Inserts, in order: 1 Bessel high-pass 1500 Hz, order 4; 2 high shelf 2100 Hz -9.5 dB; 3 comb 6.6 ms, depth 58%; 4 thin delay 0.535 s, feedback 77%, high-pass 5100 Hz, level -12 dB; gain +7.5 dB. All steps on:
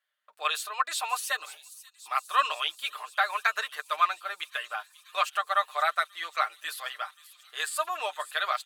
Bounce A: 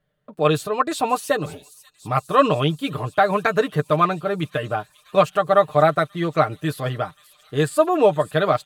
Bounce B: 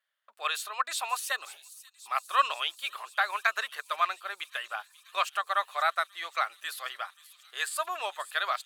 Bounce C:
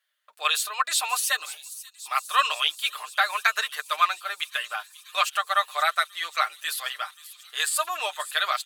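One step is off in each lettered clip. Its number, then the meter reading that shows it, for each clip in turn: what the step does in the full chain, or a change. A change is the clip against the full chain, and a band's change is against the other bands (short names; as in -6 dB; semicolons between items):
1, 500 Hz band +18.5 dB; 3, crest factor change +1.5 dB; 2, 8 kHz band +6.0 dB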